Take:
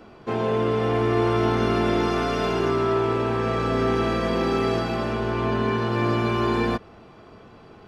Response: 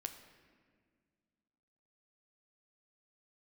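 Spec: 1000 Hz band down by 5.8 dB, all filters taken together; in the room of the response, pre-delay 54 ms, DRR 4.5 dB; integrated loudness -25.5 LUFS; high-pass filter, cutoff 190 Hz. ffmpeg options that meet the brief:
-filter_complex "[0:a]highpass=190,equalizer=f=1k:t=o:g=-7.5,asplit=2[a][b];[1:a]atrim=start_sample=2205,adelay=54[c];[b][c]afir=irnorm=-1:irlink=0,volume=-2dB[d];[a][d]amix=inputs=2:normalize=0,volume=-2dB"

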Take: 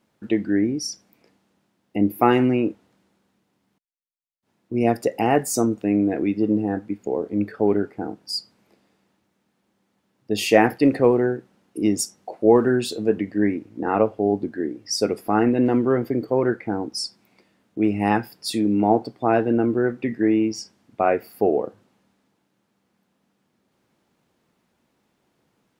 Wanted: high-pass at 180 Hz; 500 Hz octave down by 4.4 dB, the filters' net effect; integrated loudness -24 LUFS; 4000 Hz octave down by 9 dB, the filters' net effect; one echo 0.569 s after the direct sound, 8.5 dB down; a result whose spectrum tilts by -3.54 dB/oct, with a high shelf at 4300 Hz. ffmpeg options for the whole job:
-af "highpass=180,equalizer=f=500:t=o:g=-5.5,equalizer=f=4k:t=o:g=-7.5,highshelf=f=4.3k:g=-7.5,aecho=1:1:569:0.376,volume=1dB"

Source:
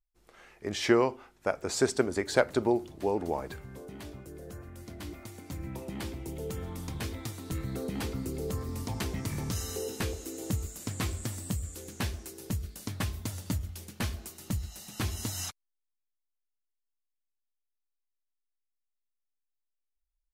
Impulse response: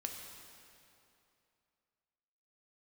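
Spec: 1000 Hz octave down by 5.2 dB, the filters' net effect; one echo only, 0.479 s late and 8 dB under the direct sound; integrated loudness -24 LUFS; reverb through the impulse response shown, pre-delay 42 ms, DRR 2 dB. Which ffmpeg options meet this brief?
-filter_complex "[0:a]equalizer=f=1k:t=o:g=-7,aecho=1:1:479:0.398,asplit=2[a][b];[1:a]atrim=start_sample=2205,adelay=42[c];[b][c]afir=irnorm=-1:irlink=0,volume=-1dB[d];[a][d]amix=inputs=2:normalize=0,volume=7.5dB"

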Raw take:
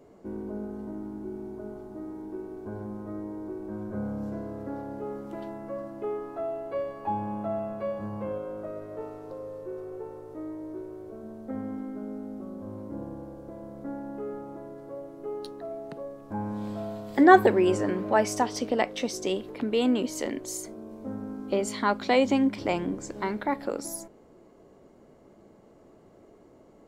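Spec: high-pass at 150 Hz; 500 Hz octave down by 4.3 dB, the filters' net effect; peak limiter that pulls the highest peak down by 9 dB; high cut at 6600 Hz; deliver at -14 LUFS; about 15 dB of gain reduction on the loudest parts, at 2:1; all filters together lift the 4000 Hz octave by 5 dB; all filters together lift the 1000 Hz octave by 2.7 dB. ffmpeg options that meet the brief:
-af "highpass=150,lowpass=6.6k,equalizer=f=500:t=o:g=-8,equalizer=f=1k:t=o:g=7,equalizer=f=4k:t=o:g=7,acompressor=threshold=-37dB:ratio=2,volume=26dB,alimiter=limit=-1dB:level=0:latency=1"

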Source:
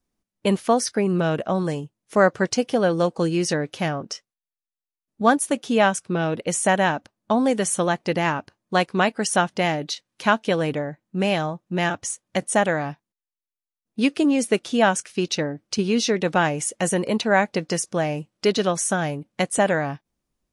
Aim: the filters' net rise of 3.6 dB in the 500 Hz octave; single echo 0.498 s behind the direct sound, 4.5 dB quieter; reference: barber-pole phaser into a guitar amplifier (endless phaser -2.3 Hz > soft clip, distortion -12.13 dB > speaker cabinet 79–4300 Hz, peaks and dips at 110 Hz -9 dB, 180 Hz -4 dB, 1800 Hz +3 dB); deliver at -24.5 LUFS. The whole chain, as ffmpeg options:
-filter_complex "[0:a]equalizer=f=500:t=o:g=4.5,aecho=1:1:498:0.596,asplit=2[a][b];[b]afreqshift=-2.3[c];[a][c]amix=inputs=2:normalize=1,asoftclip=threshold=-17dB,highpass=79,equalizer=f=110:t=q:w=4:g=-9,equalizer=f=180:t=q:w=4:g=-4,equalizer=f=1.8k:t=q:w=4:g=3,lowpass=f=4.3k:w=0.5412,lowpass=f=4.3k:w=1.3066,volume=1.5dB"

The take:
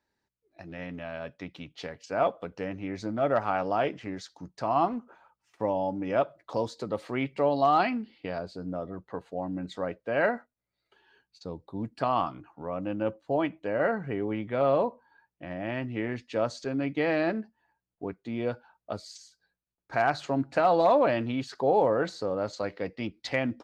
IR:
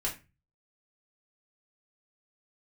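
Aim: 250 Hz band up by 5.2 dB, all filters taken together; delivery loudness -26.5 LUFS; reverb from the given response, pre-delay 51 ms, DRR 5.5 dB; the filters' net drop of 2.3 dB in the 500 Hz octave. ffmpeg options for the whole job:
-filter_complex "[0:a]equalizer=f=250:t=o:g=7.5,equalizer=f=500:t=o:g=-4.5,asplit=2[a][b];[1:a]atrim=start_sample=2205,adelay=51[c];[b][c]afir=irnorm=-1:irlink=0,volume=-10dB[d];[a][d]amix=inputs=2:normalize=0,volume=1.5dB"

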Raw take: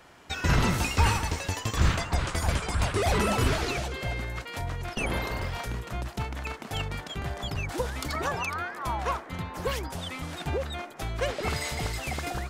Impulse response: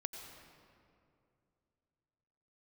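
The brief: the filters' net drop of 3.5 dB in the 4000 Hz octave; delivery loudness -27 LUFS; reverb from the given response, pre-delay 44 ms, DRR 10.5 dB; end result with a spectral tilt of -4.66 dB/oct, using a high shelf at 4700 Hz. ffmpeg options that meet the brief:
-filter_complex "[0:a]equalizer=f=4k:t=o:g=-7,highshelf=f=4.7k:g=4.5,asplit=2[a][b];[1:a]atrim=start_sample=2205,adelay=44[c];[b][c]afir=irnorm=-1:irlink=0,volume=-9dB[d];[a][d]amix=inputs=2:normalize=0,volume=3dB"

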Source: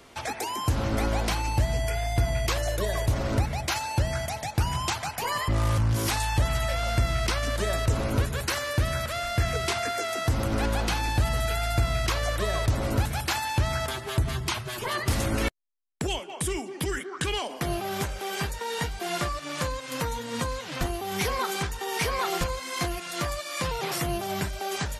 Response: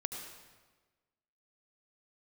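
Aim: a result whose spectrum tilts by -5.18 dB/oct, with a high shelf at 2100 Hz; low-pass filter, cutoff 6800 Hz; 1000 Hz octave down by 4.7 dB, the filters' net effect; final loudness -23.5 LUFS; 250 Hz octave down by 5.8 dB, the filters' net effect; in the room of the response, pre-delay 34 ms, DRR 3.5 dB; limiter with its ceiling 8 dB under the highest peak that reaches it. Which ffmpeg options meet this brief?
-filter_complex "[0:a]lowpass=6.8k,equalizer=f=250:t=o:g=-8.5,equalizer=f=1k:t=o:g=-4,highshelf=f=2.1k:g=-7,alimiter=limit=-23dB:level=0:latency=1,asplit=2[a][b];[1:a]atrim=start_sample=2205,adelay=34[c];[b][c]afir=irnorm=-1:irlink=0,volume=-4dB[d];[a][d]amix=inputs=2:normalize=0,volume=7.5dB"

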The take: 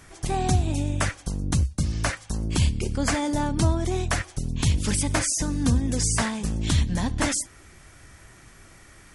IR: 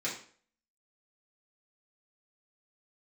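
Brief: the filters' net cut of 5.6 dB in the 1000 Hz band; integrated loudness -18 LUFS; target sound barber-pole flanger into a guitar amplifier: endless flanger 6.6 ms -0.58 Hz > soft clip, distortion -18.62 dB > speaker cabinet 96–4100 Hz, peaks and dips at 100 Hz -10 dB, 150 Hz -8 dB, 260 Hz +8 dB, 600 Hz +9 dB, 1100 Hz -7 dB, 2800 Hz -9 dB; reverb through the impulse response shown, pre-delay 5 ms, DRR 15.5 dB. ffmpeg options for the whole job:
-filter_complex "[0:a]equalizer=f=1k:t=o:g=-8.5,asplit=2[a][b];[1:a]atrim=start_sample=2205,adelay=5[c];[b][c]afir=irnorm=-1:irlink=0,volume=-20.5dB[d];[a][d]amix=inputs=2:normalize=0,asplit=2[e][f];[f]adelay=6.6,afreqshift=-0.58[g];[e][g]amix=inputs=2:normalize=1,asoftclip=threshold=-18dB,highpass=96,equalizer=f=100:t=q:w=4:g=-10,equalizer=f=150:t=q:w=4:g=-8,equalizer=f=260:t=q:w=4:g=8,equalizer=f=600:t=q:w=4:g=9,equalizer=f=1.1k:t=q:w=4:g=-7,equalizer=f=2.8k:t=q:w=4:g=-9,lowpass=f=4.1k:w=0.5412,lowpass=f=4.1k:w=1.3066,volume=13dB"

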